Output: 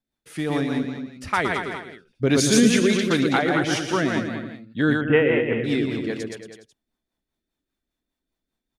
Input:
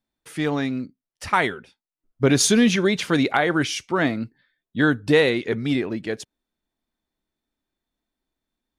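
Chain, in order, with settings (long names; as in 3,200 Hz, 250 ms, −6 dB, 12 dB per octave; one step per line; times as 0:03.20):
bouncing-ball delay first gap 120 ms, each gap 0.9×, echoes 5
rotating-speaker cabinet horn 5 Hz
0:05.01–0:05.64: Chebyshev low-pass filter 3,200 Hz, order 8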